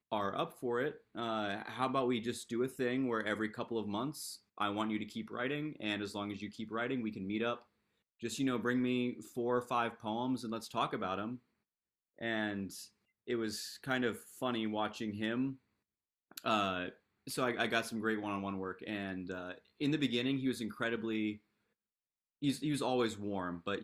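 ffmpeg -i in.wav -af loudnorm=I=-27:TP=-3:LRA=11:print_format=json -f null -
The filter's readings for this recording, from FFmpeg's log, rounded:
"input_i" : "-37.1",
"input_tp" : "-16.3",
"input_lra" : "2.7",
"input_thresh" : "-47.3",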